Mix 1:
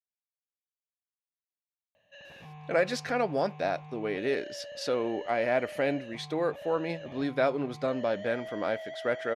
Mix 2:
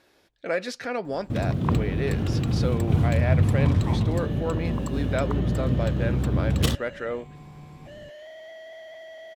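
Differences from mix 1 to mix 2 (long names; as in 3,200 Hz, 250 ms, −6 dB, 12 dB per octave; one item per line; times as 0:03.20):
speech: entry −2.25 s
first sound: unmuted
master: add parametric band 770 Hz −3.5 dB 0.64 octaves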